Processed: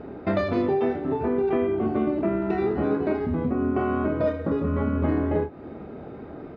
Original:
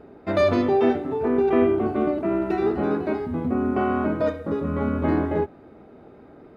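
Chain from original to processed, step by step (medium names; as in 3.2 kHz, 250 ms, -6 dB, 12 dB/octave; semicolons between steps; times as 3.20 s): low-pass 4.4 kHz 12 dB/octave; peaking EQ 120 Hz +3.5 dB 2.9 oct; compression 4:1, threshold -29 dBFS, peak gain reduction 13.5 dB; early reflections 26 ms -7.5 dB, 40 ms -11 dB; trim +6 dB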